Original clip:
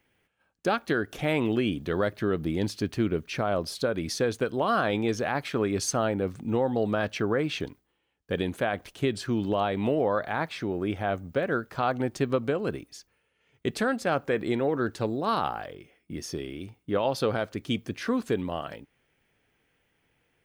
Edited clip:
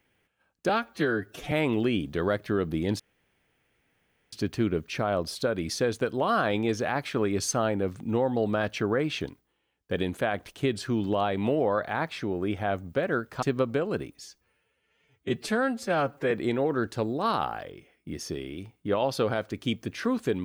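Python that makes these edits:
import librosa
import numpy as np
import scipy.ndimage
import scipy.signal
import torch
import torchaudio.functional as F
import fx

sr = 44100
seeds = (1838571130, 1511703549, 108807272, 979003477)

y = fx.edit(x, sr, fx.stretch_span(start_s=0.69, length_s=0.55, factor=1.5),
    fx.insert_room_tone(at_s=2.72, length_s=1.33),
    fx.cut(start_s=11.82, length_s=0.34),
    fx.stretch_span(start_s=12.93, length_s=1.41, factor=1.5), tone=tone)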